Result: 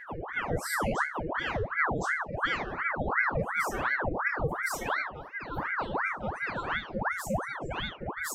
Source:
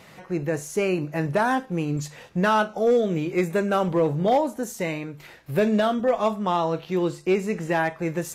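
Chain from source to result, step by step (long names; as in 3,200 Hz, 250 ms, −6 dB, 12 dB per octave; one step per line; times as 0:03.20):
spectral dynamics exaggerated over time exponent 3
low shelf with overshoot 610 Hz +8.5 dB, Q 1.5
mains-hum notches 50/100/150 Hz
in parallel at +2.5 dB: downward compressor, threshold −36 dBFS, peak gain reduction 24 dB
on the sum: volume swells 216 ms
brickwall limiter −26 dBFS, peak gain reduction 18 dB
Butterworth band-reject 760 Hz, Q 1.9
on a send: backwards echo 1,064 ms −4.5 dB
on the sum: rectangular room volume 50 cubic metres, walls mixed, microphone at 0.66 metres
ring modulator whose carrier an LFO sweeps 1,000 Hz, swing 85%, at 2.8 Hz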